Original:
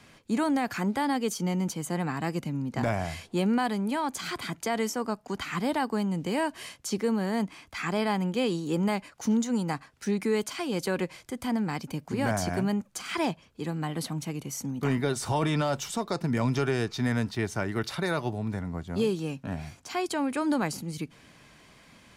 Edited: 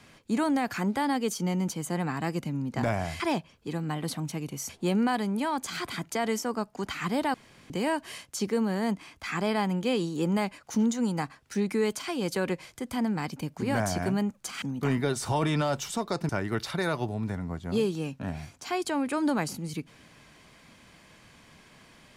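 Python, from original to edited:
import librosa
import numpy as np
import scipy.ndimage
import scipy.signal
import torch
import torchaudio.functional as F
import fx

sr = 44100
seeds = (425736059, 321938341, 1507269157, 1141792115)

y = fx.edit(x, sr, fx.room_tone_fill(start_s=5.85, length_s=0.36),
    fx.move(start_s=13.13, length_s=1.49, to_s=3.2),
    fx.cut(start_s=16.29, length_s=1.24), tone=tone)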